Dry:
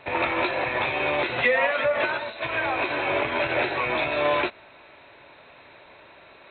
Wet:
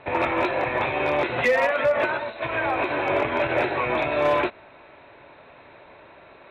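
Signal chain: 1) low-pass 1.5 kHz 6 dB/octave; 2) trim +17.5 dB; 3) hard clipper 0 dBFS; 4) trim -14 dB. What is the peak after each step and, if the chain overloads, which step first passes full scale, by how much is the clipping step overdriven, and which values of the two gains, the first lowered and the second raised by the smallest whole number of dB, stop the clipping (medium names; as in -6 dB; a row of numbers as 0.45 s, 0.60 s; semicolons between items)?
-10.5 dBFS, +7.0 dBFS, 0.0 dBFS, -14.0 dBFS; step 2, 7.0 dB; step 2 +10.5 dB, step 4 -7 dB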